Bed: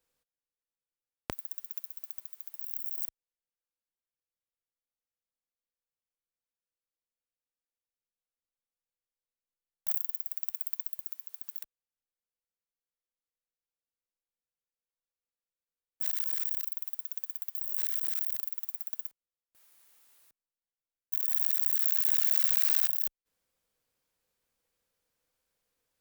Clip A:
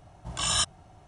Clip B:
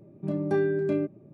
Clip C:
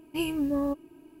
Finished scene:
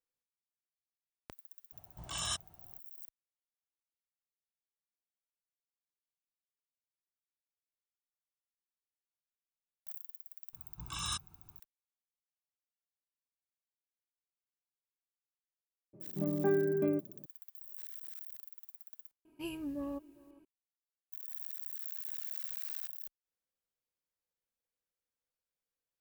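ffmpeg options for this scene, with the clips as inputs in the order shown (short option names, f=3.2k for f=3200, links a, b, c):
-filter_complex "[1:a]asplit=2[a][b];[0:a]volume=-15dB[c];[b]aecho=1:1:0.8:0.85[d];[2:a]highpass=120,lowpass=2k[e];[3:a]asplit=2[f][g];[g]adelay=402.3,volume=-22dB,highshelf=f=4k:g=-9.05[h];[f][h]amix=inputs=2:normalize=0[i];[a]atrim=end=1.07,asetpts=PTS-STARTPTS,volume=-11dB,afade=t=in:d=0.004:c=hsin,afade=t=out:st=1.066:d=0.004:c=hsin,adelay=1720[j];[d]atrim=end=1.07,asetpts=PTS-STARTPTS,volume=-14dB,afade=t=in:d=0.004:c=hsin,afade=t=out:st=1.066:d=0.004:c=hsin,adelay=10530[k];[e]atrim=end=1.33,asetpts=PTS-STARTPTS,volume=-4.5dB,afade=t=in:d=0.004:c=hsin,afade=t=out:st=1.326:d=0.004:c=hsin,adelay=15930[l];[i]atrim=end=1.2,asetpts=PTS-STARTPTS,volume=-12dB,afade=t=in:d=0.004:c=hsin,afade=t=out:st=1.196:d=0.004:c=hsin,adelay=19250[m];[c][j][k][l][m]amix=inputs=5:normalize=0"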